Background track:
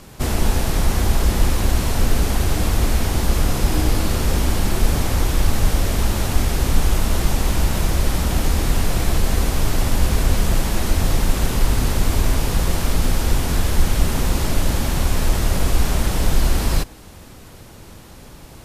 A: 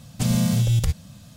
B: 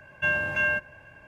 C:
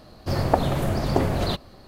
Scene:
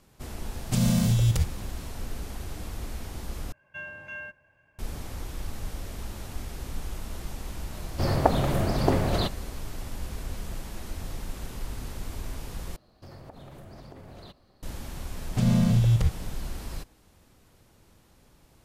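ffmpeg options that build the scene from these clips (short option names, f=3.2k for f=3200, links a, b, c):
-filter_complex "[1:a]asplit=2[a][b];[3:a]asplit=2[c][d];[0:a]volume=-18dB[e];[d]acompressor=threshold=-28dB:ratio=6:attack=3.2:release=140:knee=1:detection=peak[f];[b]aemphasis=mode=reproduction:type=75kf[g];[e]asplit=3[h][i][j];[h]atrim=end=3.524[k];[2:a]atrim=end=1.27,asetpts=PTS-STARTPTS,volume=-14.5dB[l];[i]atrim=start=4.786:end=12.764[m];[f]atrim=end=1.87,asetpts=PTS-STARTPTS,volume=-14dB[n];[j]atrim=start=14.626[o];[a]atrim=end=1.36,asetpts=PTS-STARTPTS,volume=-2.5dB,afade=t=in:d=0.004:c=hsin,afade=t=out:st=1.356:d=0.004:c=hsin,adelay=520[p];[c]atrim=end=1.87,asetpts=PTS-STARTPTS,volume=-1.5dB,afade=t=in:d=0.004:c=hsin,afade=t=out:st=1.866:d=0.004:c=hsin,adelay=7720[q];[g]atrim=end=1.36,asetpts=PTS-STARTPTS,volume=-1dB,afade=t=in:d=0.004:c=hsin,afade=t=out:st=1.356:d=0.004:c=hsin,adelay=15170[r];[k][l]acrossfade=d=0.004:c1=hsin:c2=hsin[s];[s][m]acrossfade=d=0.004:c1=hsin:c2=hsin[t];[t][n]acrossfade=d=0.004:c1=hsin:c2=hsin[u];[u][o]acrossfade=d=0.004:c1=hsin:c2=hsin[v];[v][p][q][r]amix=inputs=4:normalize=0"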